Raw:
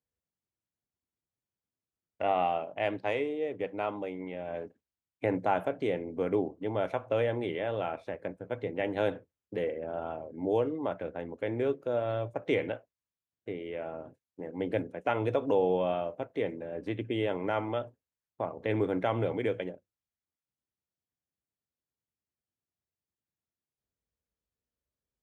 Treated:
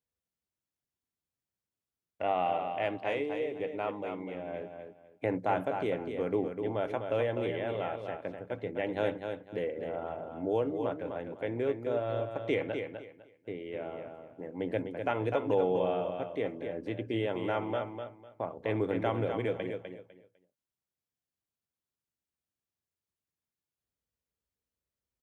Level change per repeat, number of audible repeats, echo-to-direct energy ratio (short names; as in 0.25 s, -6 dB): -13.0 dB, 3, -6.5 dB